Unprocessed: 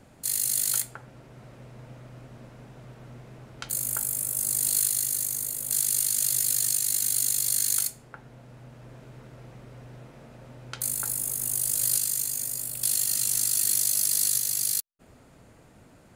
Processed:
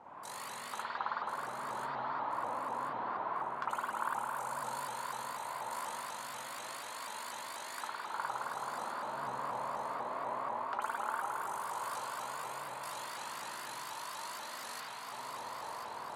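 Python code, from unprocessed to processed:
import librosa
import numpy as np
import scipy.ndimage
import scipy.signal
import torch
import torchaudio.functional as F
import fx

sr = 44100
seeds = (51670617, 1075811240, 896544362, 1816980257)

p1 = fx.bandpass_q(x, sr, hz=1000.0, q=7.9)
p2 = p1 + fx.echo_feedback(p1, sr, ms=1035, feedback_pct=47, wet_db=-11.5, dry=0)
p3 = fx.rider(p2, sr, range_db=4, speed_s=0.5)
p4 = fx.rev_spring(p3, sr, rt60_s=3.7, pass_ms=(52,), chirp_ms=40, drr_db=-9.5)
p5 = fx.vibrato_shape(p4, sr, shape='saw_up', rate_hz=4.1, depth_cents=160.0)
y = F.gain(torch.from_numpy(p5), 13.5).numpy()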